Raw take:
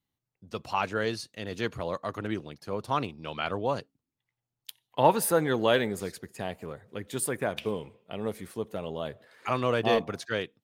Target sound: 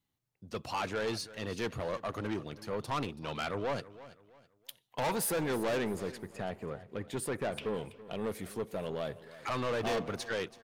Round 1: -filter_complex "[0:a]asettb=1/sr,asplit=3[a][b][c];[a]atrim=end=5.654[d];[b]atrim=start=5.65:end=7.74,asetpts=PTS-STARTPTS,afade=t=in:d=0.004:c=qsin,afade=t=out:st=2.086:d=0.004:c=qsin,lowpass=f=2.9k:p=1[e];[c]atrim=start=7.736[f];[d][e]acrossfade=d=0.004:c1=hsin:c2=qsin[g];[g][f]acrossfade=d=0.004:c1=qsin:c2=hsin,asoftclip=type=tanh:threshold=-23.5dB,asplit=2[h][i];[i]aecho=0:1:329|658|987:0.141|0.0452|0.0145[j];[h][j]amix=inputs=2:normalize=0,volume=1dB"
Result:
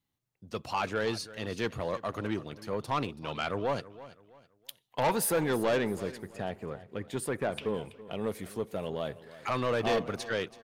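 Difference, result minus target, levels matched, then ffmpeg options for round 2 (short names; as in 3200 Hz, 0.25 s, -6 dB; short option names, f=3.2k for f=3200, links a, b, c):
soft clip: distortion -4 dB
-filter_complex "[0:a]asettb=1/sr,asplit=3[a][b][c];[a]atrim=end=5.654[d];[b]atrim=start=5.65:end=7.74,asetpts=PTS-STARTPTS,afade=t=in:d=0.004:c=qsin,afade=t=out:st=2.086:d=0.004:c=qsin,lowpass=f=2.9k:p=1[e];[c]atrim=start=7.736[f];[d][e]acrossfade=d=0.004:c1=hsin:c2=qsin[g];[g][f]acrossfade=d=0.004:c1=qsin:c2=hsin,asoftclip=type=tanh:threshold=-30dB,asplit=2[h][i];[i]aecho=0:1:329|658|987:0.141|0.0452|0.0145[j];[h][j]amix=inputs=2:normalize=0,volume=1dB"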